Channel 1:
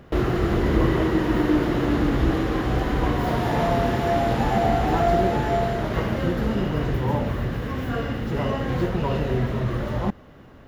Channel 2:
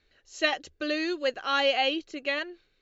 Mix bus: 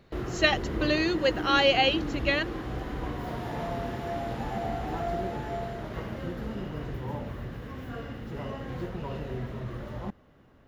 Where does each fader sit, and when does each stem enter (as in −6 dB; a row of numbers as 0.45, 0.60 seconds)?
−11.5, +2.5 decibels; 0.00, 0.00 seconds